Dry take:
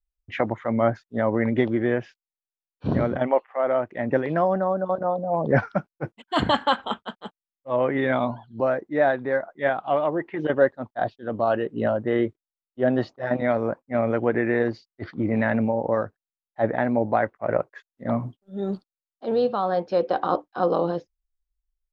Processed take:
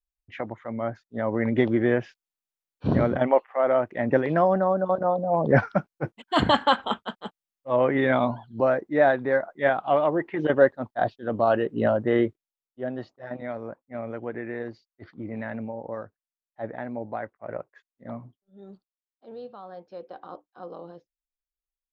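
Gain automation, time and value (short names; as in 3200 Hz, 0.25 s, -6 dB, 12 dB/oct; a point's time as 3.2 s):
0.89 s -8.5 dB
1.69 s +1 dB
12.19 s +1 dB
12.93 s -11 dB
18.05 s -11 dB
18.57 s -18 dB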